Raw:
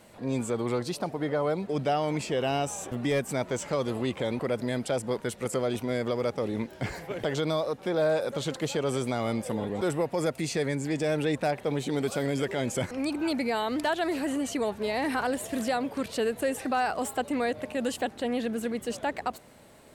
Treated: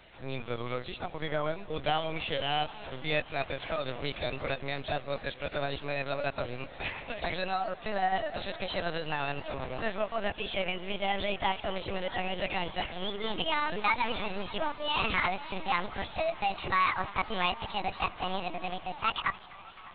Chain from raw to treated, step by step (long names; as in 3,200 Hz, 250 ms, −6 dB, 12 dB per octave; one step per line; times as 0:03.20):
pitch glide at a constant tempo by +8 semitones starting unshifted
spectral tilt +4 dB per octave
linear-prediction vocoder at 8 kHz pitch kept
on a send: feedback echo with a band-pass in the loop 606 ms, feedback 82%, band-pass 1,300 Hz, level −22 dB
on the sum: feedback echo with a swinging delay time 256 ms, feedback 73%, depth 175 cents, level −22 dB